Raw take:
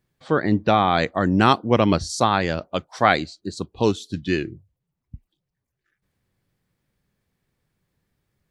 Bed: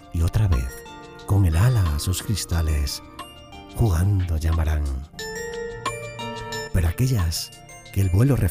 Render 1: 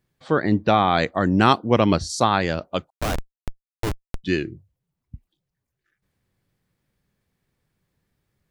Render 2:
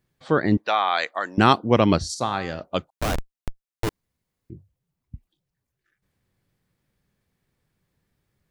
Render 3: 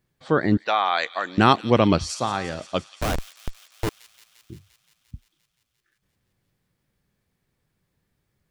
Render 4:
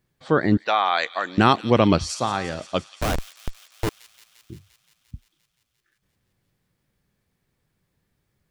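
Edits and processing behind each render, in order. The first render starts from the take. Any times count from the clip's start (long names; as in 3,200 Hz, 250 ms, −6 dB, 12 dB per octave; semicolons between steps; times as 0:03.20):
0:02.90–0:04.24: comparator with hysteresis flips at −16.5 dBFS
0:00.57–0:01.38: high-pass filter 830 Hz; 0:02.14–0:02.61: tuned comb filter 130 Hz, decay 0.59 s; 0:03.89–0:04.50: fill with room tone
delay with a high-pass on its return 174 ms, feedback 75%, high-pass 2,900 Hz, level −13 dB
level +1 dB; brickwall limiter −3 dBFS, peak gain reduction 2.5 dB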